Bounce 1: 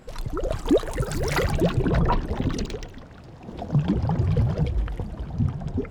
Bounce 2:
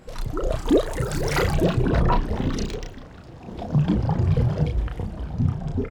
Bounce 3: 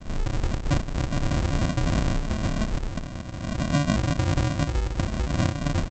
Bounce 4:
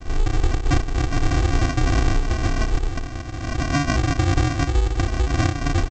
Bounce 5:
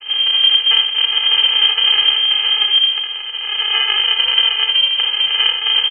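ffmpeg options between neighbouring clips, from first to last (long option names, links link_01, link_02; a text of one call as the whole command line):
ffmpeg -i in.wav -filter_complex "[0:a]asplit=2[link_01][link_02];[link_02]adelay=33,volume=-4dB[link_03];[link_01][link_03]amix=inputs=2:normalize=0" out.wav
ffmpeg -i in.wav -af "acompressor=threshold=-31dB:ratio=4,aresample=16000,acrusher=samples=37:mix=1:aa=0.000001,aresample=44100,volume=8.5dB" out.wav
ffmpeg -i in.wav -af "aecho=1:1:2.6:0.84,volume=2.5dB" out.wav
ffmpeg -i in.wav -af "lowpass=frequency=2700:width_type=q:width=0.5098,lowpass=frequency=2700:width_type=q:width=0.6013,lowpass=frequency=2700:width_type=q:width=0.9,lowpass=frequency=2700:width_type=q:width=2.563,afreqshift=-3200,aecho=1:1:60|78:0.422|0.355,volume=3dB" out.wav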